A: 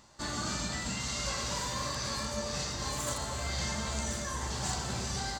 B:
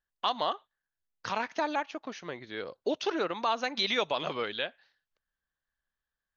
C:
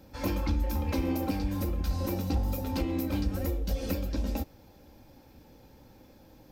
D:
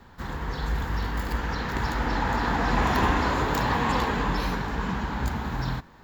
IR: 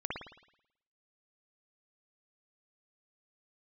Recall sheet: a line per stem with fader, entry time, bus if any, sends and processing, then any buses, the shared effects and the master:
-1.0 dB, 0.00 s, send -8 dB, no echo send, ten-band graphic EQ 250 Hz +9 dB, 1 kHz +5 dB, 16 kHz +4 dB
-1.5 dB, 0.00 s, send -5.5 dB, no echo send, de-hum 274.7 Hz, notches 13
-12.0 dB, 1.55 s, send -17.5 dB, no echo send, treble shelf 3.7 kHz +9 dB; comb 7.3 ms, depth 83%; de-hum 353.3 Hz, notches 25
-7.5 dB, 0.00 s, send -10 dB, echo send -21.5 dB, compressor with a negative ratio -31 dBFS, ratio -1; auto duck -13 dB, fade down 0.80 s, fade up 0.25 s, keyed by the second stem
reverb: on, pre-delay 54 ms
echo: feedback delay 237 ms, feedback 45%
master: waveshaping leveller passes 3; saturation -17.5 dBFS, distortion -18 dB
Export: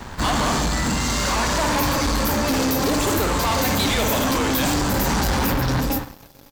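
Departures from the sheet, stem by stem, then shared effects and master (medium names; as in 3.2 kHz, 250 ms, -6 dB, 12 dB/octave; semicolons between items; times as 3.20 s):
stem C -12.0 dB -> -0.5 dB; stem D -7.5 dB -> +0.5 dB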